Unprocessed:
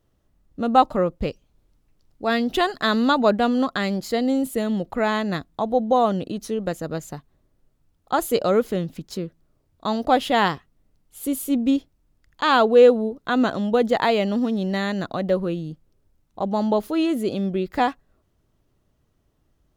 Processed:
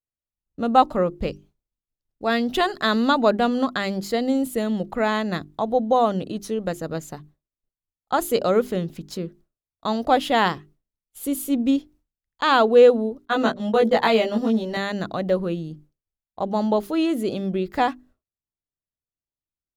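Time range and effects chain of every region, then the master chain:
0:13.25–0:14.77: noise gate −25 dBFS, range −43 dB + mains-hum notches 60/120/180/240/300/360/420/480/540/600 Hz + double-tracking delay 18 ms −2 dB
whole clip: mains-hum notches 50/100/150/200/250/300/350/400 Hz; downward expander −44 dBFS

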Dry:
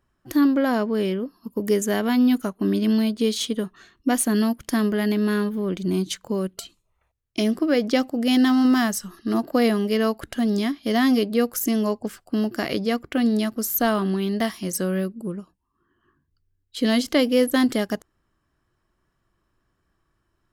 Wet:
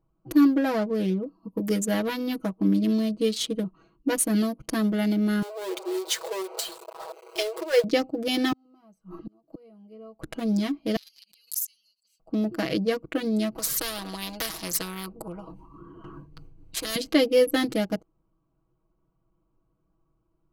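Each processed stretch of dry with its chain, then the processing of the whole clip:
0:05.42–0:07.84: converter with a step at zero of −24.5 dBFS + linear-phase brick-wall high-pass 350 Hz
0:08.52–0:10.22: high-shelf EQ 5,300 Hz +11.5 dB + gate with flip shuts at −19 dBFS, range −35 dB + multiband upward and downward compressor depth 100%
0:10.96–0:12.20: inverse Chebyshev high-pass filter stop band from 880 Hz, stop band 70 dB + background raised ahead of every attack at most 120 dB per second
0:13.55–0:16.96: noise gate with hold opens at −57 dBFS, closes at −63 dBFS + upward compression, threshold −34 dBFS + every bin compressed towards the loudest bin 4 to 1
whole clip: adaptive Wiener filter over 25 samples; comb filter 6.2 ms, depth 91%; dynamic equaliser 970 Hz, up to −4 dB, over −34 dBFS, Q 1; level −2 dB

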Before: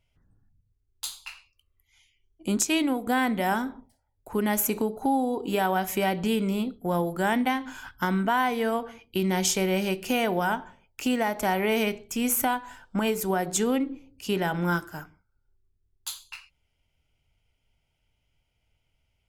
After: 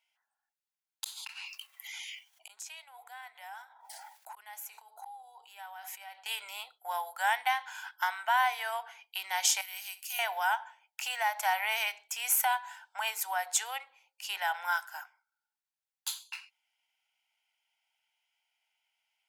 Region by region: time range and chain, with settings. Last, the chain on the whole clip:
0:01.04–0:06.26: flanger 2 Hz, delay 2.3 ms, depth 2.4 ms, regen +80% + gate with flip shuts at −33 dBFS, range −40 dB + envelope flattener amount 100%
0:09.61–0:10.19: first-order pre-emphasis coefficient 0.97 + flutter between parallel walls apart 11.1 metres, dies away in 0.25 s + multiband upward and downward expander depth 40%
whole clip: elliptic high-pass filter 780 Hz, stop band 60 dB; notch filter 1,200 Hz, Q 6.3

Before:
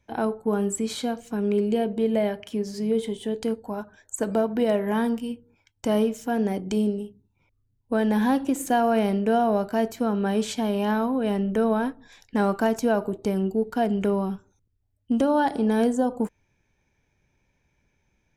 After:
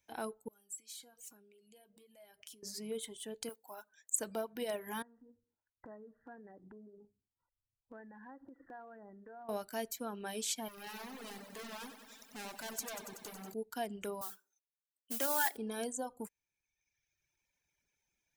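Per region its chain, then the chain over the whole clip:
0:00.48–0:02.63: high-shelf EQ 4,600 Hz +8 dB + downward compressor 12 to 1, threshold −36 dBFS + tuned comb filter 160 Hz, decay 0.2 s
0:03.49–0:04.15: one scale factor per block 7 bits + high-pass filter 470 Hz 6 dB per octave
0:05.02–0:09.49: linear-phase brick-wall low-pass 2,000 Hz + downward compressor 8 to 1, threshold −32 dBFS
0:10.68–0:13.54: hard clipping −30 dBFS + feedback echo at a low word length 94 ms, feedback 80%, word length 10 bits, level −5.5 dB
0:14.21–0:15.57: high-pass filter 310 Hz + parametric band 1,800 Hz +9.5 dB 0.84 octaves + noise that follows the level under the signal 16 dB
whole clip: low-shelf EQ 320 Hz −8 dB; reverb reduction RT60 1.3 s; first-order pre-emphasis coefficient 0.8; level +1 dB

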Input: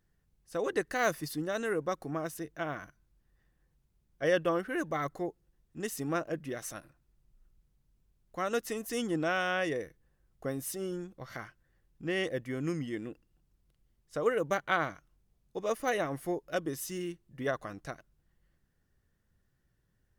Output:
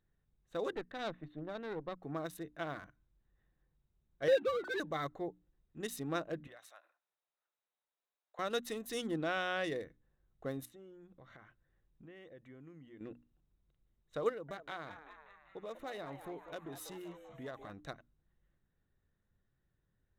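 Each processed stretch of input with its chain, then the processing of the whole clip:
0:00.75–0:02.03: high-frequency loss of the air 380 metres + tube saturation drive 28 dB, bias 0.75
0:04.28–0:04.80: three sine waves on the formant tracks + mains-hum notches 60/120/180/240/300/360 Hz + power curve on the samples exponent 0.7
0:06.47–0:08.39: high-pass filter 600 Hz 24 dB per octave + downward compressor 2 to 1, threshold −51 dBFS
0:09.17–0:09.64: high-frequency loss of the air 92 metres + one half of a high-frequency compander encoder only
0:10.65–0:13.01: low-pass filter 11,000 Hz + downward compressor 4 to 1, threshold −49 dBFS
0:14.29–0:17.70: downward compressor 2.5 to 1, threshold −40 dBFS + echo with shifted repeats 195 ms, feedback 64%, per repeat +150 Hz, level −10 dB
whole clip: adaptive Wiener filter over 9 samples; parametric band 3,800 Hz +14.5 dB 0.21 octaves; mains-hum notches 60/120/180/240/300 Hz; level −4.5 dB

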